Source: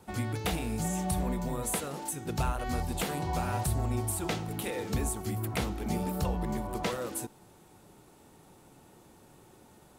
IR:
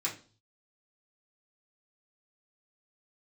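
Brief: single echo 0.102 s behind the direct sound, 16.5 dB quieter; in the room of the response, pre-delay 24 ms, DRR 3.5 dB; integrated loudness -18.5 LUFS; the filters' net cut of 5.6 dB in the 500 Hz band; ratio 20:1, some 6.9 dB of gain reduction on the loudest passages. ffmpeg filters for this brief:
-filter_complex "[0:a]equalizer=f=500:t=o:g=-7.5,acompressor=threshold=-32dB:ratio=20,aecho=1:1:102:0.15,asplit=2[a][b];[1:a]atrim=start_sample=2205,adelay=24[c];[b][c]afir=irnorm=-1:irlink=0,volume=-8dB[d];[a][d]amix=inputs=2:normalize=0,volume=17dB"

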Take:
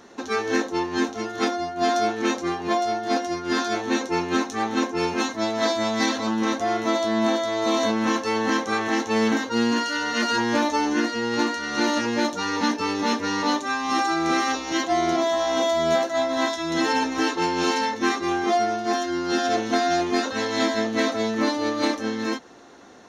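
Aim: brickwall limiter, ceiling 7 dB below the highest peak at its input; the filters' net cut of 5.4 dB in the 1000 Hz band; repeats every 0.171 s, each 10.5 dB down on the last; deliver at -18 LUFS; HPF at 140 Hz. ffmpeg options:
-af "highpass=140,equalizer=f=1k:t=o:g=-8,alimiter=limit=-18dB:level=0:latency=1,aecho=1:1:171|342|513:0.299|0.0896|0.0269,volume=9dB"

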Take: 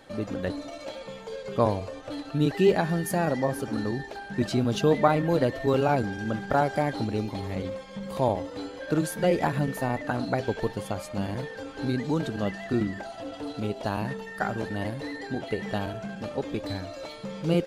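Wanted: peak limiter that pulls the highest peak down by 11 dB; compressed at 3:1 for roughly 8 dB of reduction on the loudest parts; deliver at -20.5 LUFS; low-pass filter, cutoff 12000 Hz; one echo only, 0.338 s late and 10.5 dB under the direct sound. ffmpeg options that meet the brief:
-af "lowpass=12k,acompressor=threshold=-26dB:ratio=3,alimiter=level_in=1dB:limit=-24dB:level=0:latency=1,volume=-1dB,aecho=1:1:338:0.299,volume=14.5dB"

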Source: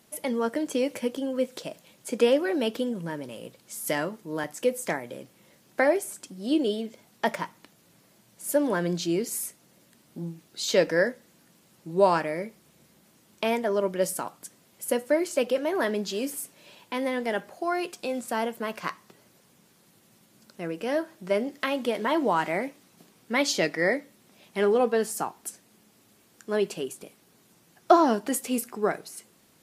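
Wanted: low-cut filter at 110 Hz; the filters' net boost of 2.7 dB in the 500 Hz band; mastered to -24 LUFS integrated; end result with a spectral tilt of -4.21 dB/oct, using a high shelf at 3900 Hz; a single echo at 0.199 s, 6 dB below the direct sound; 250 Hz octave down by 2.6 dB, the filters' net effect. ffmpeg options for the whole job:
-af "highpass=110,equalizer=f=250:t=o:g=-5,equalizer=f=500:t=o:g=4.5,highshelf=f=3.9k:g=-5.5,aecho=1:1:199:0.501,volume=1.5dB"

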